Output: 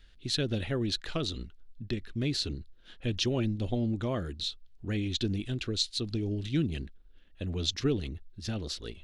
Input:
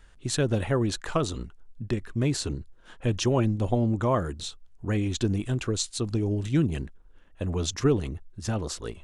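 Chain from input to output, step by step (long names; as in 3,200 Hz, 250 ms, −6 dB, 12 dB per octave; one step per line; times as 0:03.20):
octave-band graphic EQ 125/500/1,000/4,000/8,000 Hz −4/−3/−12/+10/−11 dB
level −2.5 dB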